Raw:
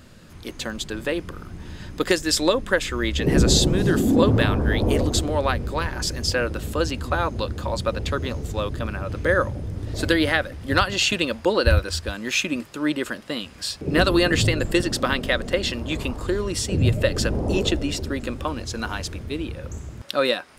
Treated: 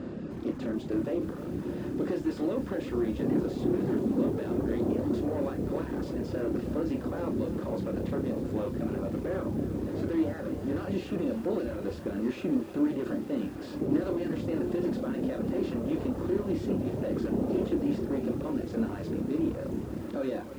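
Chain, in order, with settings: spectral levelling over time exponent 0.6; peak limiter -8.5 dBFS, peak gain reduction 10 dB; saturation -20 dBFS, distortion -10 dB; band-pass filter 280 Hz, Q 1.4; flutter echo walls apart 5.3 m, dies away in 0.35 s; reverb removal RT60 0.87 s; bit-crushed delay 309 ms, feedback 80%, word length 8-bit, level -13 dB

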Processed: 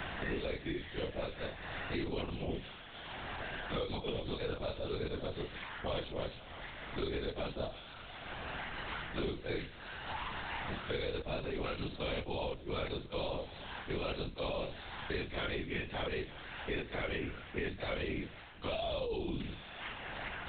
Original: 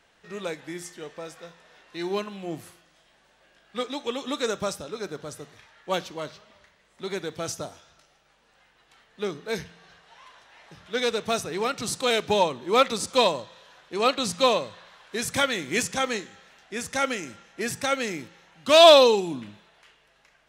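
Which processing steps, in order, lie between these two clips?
short-time spectra conjugated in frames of 88 ms; reverse; compression 10:1, threshold -35 dBFS, peak gain reduction 24 dB; reverse; dynamic bell 1.2 kHz, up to -8 dB, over -56 dBFS, Q 1.3; LPC vocoder at 8 kHz whisper; three bands compressed up and down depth 100%; trim +3 dB

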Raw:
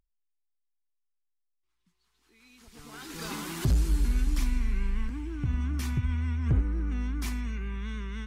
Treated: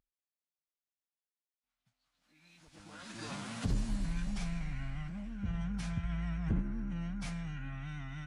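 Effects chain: high-pass 78 Hz 6 dB/octave; treble shelf 9 kHz -9 dB; de-hum 383.7 Hz, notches 23; formant-preserving pitch shift -6.5 st; trim -4 dB

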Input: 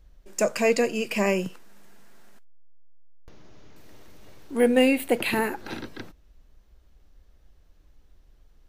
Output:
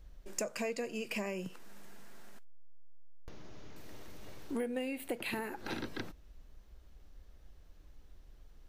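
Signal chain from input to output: compression 10:1, threshold -34 dBFS, peak gain reduction 19.5 dB

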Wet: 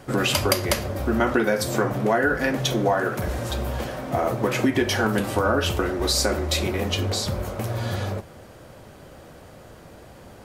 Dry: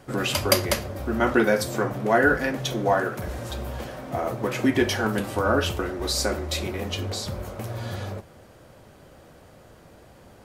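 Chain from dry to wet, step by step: compression 6:1, threshold -22 dBFS, peak gain reduction 9.5 dB; trim +5 dB

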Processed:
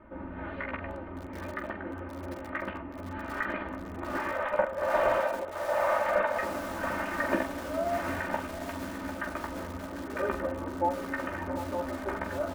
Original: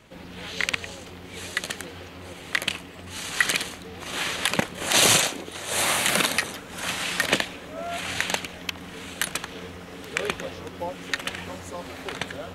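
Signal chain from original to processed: 4.31–6.43 s: resonant low shelf 410 Hz -7.5 dB, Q 3; early reflections 15 ms -6 dB, 45 ms -10.5 dB; hard clipper -14.5 dBFS, distortion -13 dB; peak limiter -18 dBFS, peak gain reduction 3.5 dB; low-pass 1.5 kHz 24 dB/octave; comb 3.3 ms, depth 80%; de-hum 134.6 Hz, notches 5; bit-crushed delay 748 ms, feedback 80%, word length 6-bit, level -11 dB

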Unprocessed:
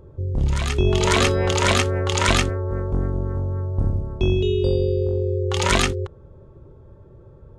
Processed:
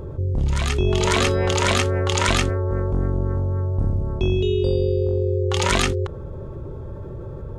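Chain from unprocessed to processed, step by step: level flattener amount 50%; trim -2.5 dB

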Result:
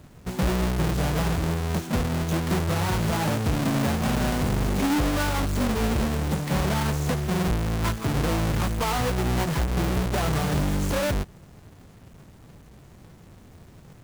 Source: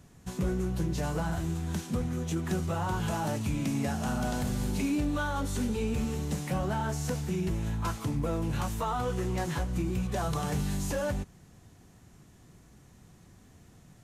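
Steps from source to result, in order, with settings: square wave that keeps the level; trim +2 dB

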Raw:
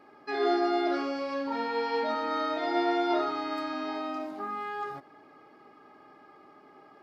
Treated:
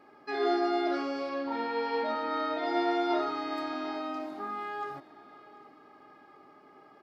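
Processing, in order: 1.29–2.66 s: low-pass 4.8 kHz 12 dB/octave; feedback delay 742 ms, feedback 42%, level -20 dB; trim -1.5 dB

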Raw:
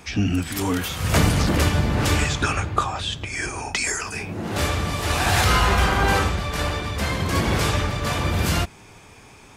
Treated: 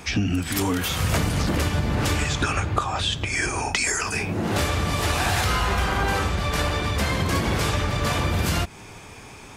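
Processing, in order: compression, threshold -24 dBFS, peak gain reduction 11 dB; trim +4.5 dB

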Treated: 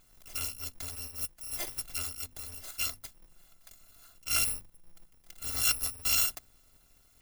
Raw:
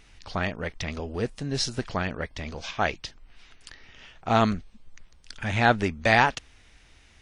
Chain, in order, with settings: bit-reversed sample order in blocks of 256 samples; hum notches 50/100/150/200/250 Hz; 1.11–1.67 s: upward expansion 1.5:1, over -37 dBFS; trim -7.5 dB

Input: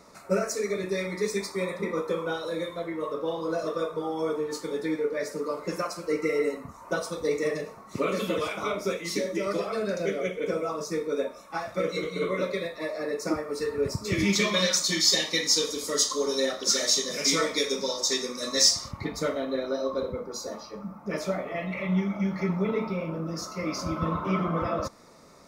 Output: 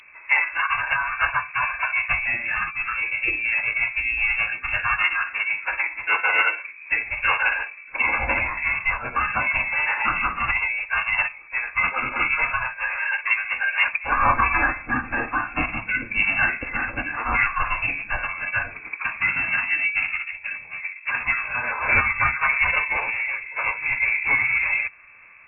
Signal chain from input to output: frequency inversion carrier 3.4 kHz; formant-preserving pitch shift -5.5 st; trim +6.5 dB

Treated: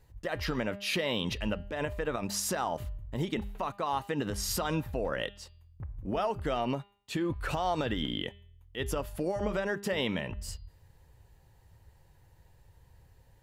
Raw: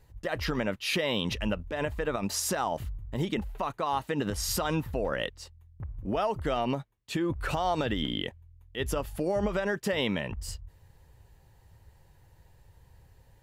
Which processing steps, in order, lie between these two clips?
de-hum 201.3 Hz, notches 24; trim -2 dB

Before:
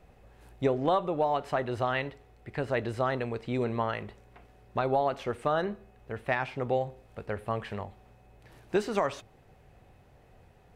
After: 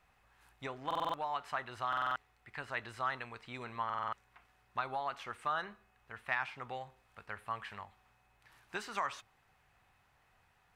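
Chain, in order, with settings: resonant low shelf 750 Hz -12.5 dB, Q 1.5; buffer glitch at 0.86/1.88/3.85 s, samples 2048, times 5; trim -4.5 dB

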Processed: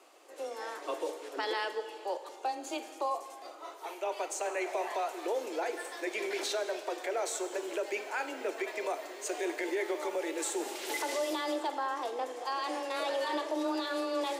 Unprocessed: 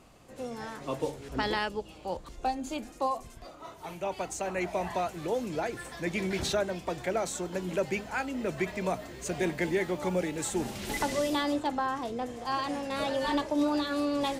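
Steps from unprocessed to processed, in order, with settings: steep high-pass 310 Hz 48 dB/octave; peak limiter -25 dBFS, peak gain reduction 7 dB; frequency shift +14 Hz; reverberation RT60 1.7 s, pre-delay 29 ms, DRR 10 dB

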